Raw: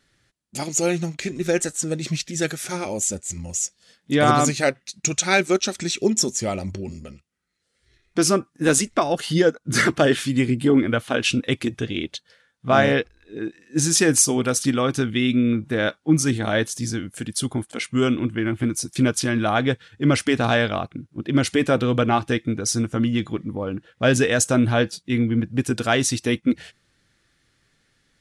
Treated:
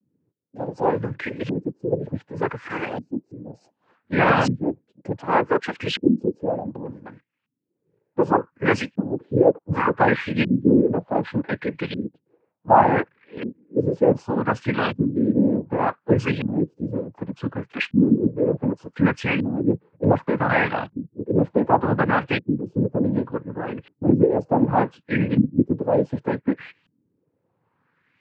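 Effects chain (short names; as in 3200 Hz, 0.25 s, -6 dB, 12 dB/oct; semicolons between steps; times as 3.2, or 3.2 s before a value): noise vocoder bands 8; LFO low-pass saw up 0.67 Hz 220–3100 Hz; gain -1.5 dB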